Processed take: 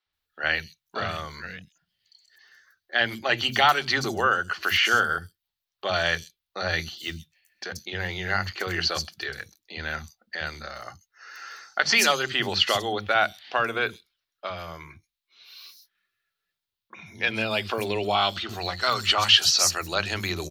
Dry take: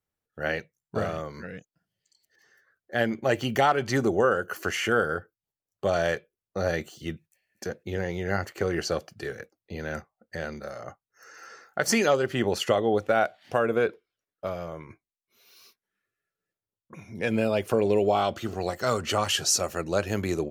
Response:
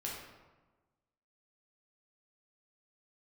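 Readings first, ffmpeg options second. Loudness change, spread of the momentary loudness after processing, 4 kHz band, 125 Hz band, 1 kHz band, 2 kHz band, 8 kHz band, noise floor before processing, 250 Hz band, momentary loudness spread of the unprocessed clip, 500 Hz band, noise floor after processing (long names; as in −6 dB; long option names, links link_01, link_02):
+3.0 dB, 19 LU, +11.0 dB, −2.5 dB, +3.0 dB, +6.5 dB, +2.5 dB, below −85 dBFS, −6.0 dB, 16 LU, −5.5 dB, below −85 dBFS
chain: -filter_complex "[0:a]equalizer=frequency=125:width_type=o:width=1:gain=-9,equalizer=frequency=250:width_type=o:width=1:gain=-6,equalizer=frequency=500:width_type=o:width=1:gain=-12,equalizer=frequency=4000:width_type=o:width=1:gain=11,equalizer=frequency=8000:width_type=o:width=1:gain=-7,acrossover=split=240|5500[link_01][link_02][link_03];[link_01]adelay=60[link_04];[link_03]adelay=130[link_05];[link_04][link_02][link_05]amix=inputs=3:normalize=0,volume=6dB"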